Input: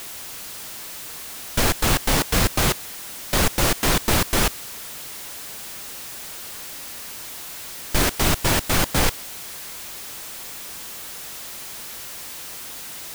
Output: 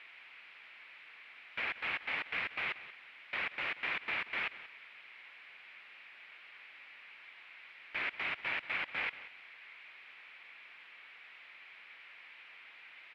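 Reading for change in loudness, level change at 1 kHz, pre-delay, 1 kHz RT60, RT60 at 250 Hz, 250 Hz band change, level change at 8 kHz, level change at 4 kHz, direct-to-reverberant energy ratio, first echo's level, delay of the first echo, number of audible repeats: -12.0 dB, -18.0 dB, no reverb, no reverb, no reverb, -30.5 dB, under -40 dB, -19.0 dB, no reverb, -15.5 dB, 183 ms, 2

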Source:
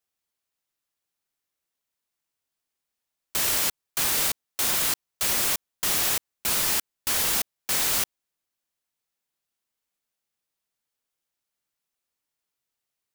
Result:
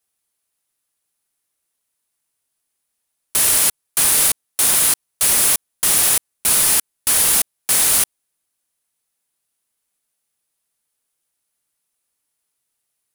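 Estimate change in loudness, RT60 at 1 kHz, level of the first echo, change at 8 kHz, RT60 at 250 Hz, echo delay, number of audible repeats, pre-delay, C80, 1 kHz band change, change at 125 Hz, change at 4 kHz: +9.0 dB, no reverb, no echo, +12.0 dB, no reverb, no echo, no echo, no reverb, no reverb, +5.0 dB, +5.0 dB, +5.5 dB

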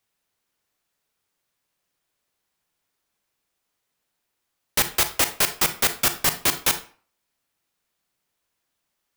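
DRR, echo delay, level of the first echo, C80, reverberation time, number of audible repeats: 9.5 dB, no echo, no echo, 17.5 dB, 0.45 s, no echo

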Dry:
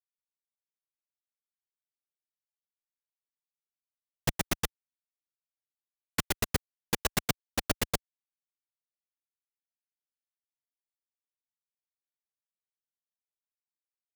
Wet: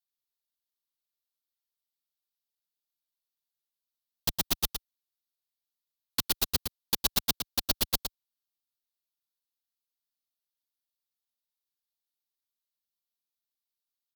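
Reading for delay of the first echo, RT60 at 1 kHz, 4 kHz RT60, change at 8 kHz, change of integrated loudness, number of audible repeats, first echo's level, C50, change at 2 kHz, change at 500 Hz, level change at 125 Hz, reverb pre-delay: 112 ms, no reverb, no reverb, +2.0 dB, +3.5 dB, 1, -7.0 dB, no reverb, -5.0 dB, -5.5 dB, -6.0 dB, no reverb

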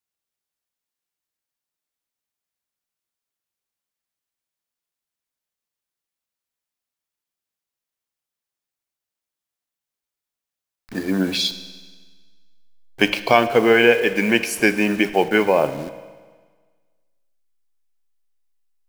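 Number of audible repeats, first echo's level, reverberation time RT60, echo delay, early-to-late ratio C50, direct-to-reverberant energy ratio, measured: no echo, no echo, 1.5 s, no echo, 12.5 dB, 10.5 dB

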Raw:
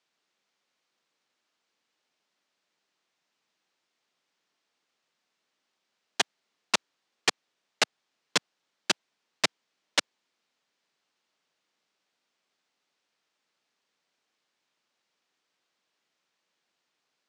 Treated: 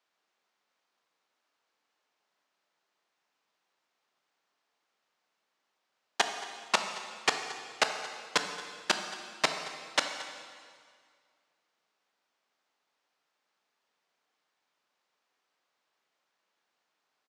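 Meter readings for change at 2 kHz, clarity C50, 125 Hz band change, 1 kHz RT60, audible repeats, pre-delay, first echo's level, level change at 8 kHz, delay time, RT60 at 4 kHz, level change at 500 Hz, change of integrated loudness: 0.0 dB, 6.5 dB, -4.0 dB, 2.0 s, 1, 7 ms, -18.5 dB, -3.5 dB, 225 ms, 1.8 s, +1.0 dB, -2.5 dB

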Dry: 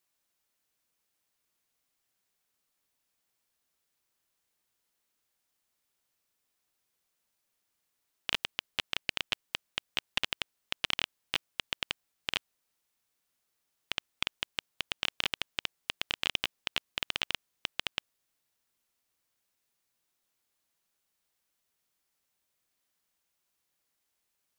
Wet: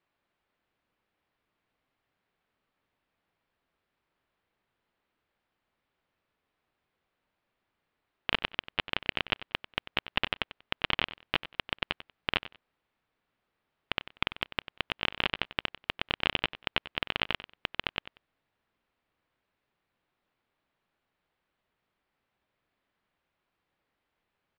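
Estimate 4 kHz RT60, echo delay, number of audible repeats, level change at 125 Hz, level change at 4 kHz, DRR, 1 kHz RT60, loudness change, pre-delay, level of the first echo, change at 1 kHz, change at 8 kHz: no reverb, 94 ms, 2, +9.0 dB, +0.5 dB, no reverb, no reverb, +2.0 dB, no reverb, -15.0 dB, +7.0 dB, under -15 dB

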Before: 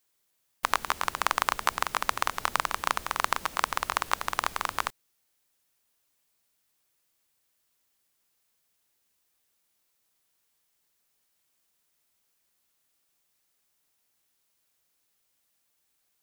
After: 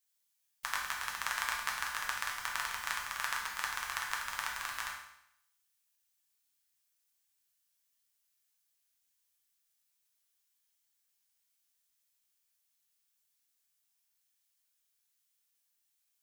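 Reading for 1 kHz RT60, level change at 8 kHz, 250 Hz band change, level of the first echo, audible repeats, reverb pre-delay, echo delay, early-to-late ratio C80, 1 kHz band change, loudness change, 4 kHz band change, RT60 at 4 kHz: 0.75 s, -4.0 dB, -17.0 dB, no echo, no echo, 7 ms, no echo, 7.0 dB, -11.0 dB, -7.0 dB, -5.5 dB, 0.75 s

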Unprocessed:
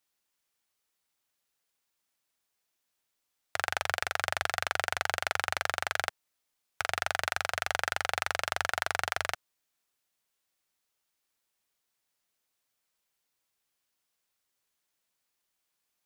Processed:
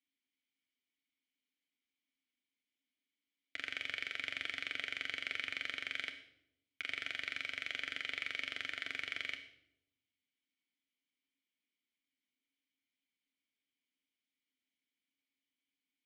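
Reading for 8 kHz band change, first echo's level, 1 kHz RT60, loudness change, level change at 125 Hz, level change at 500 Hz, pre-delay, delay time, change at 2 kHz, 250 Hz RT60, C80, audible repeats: -19.5 dB, no echo, 0.65 s, -8.0 dB, -18.5 dB, -19.5 dB, 4 ms, no echo, -7.5 dB, 1.0 s, 13.0 dB, no echo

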